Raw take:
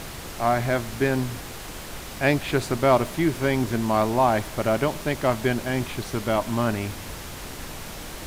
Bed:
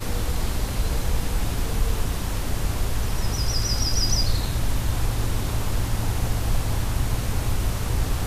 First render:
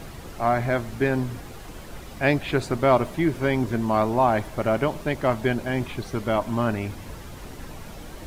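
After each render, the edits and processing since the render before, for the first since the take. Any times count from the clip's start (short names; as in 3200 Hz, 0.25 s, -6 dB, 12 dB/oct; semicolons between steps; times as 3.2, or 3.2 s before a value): denoiser 9 dB, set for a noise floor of -37 dBFS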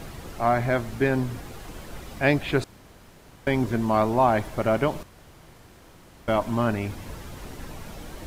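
2.64–3.47 room tone; 5.03–6.28 room tone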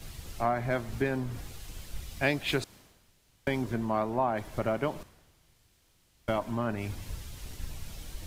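compressor 4:1, threshold -28 dBFS, peak gain reduction 11 dB; three-band expander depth 100%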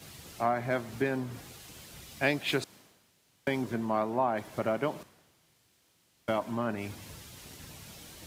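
HPF 140 Hz 12 dB/oct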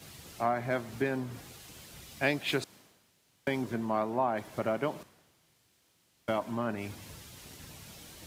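gain -1 dB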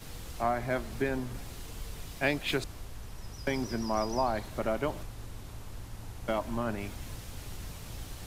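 add bed -19 dB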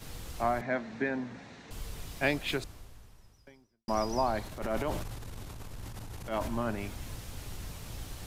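0.61–1.71 speaker cabinet 190–5300 Hz, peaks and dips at 220 Hz +6 dB, 370 Hz -5 dB, 1200 Hz -4 dB, 1800 Hz +5 dB, 3100 Hz -7 dB, 4900 Hz -8 dB; 2.36–3.88 fade out quadratic; 4.46–6.48 transient shaper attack -11 dB, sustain +7 dB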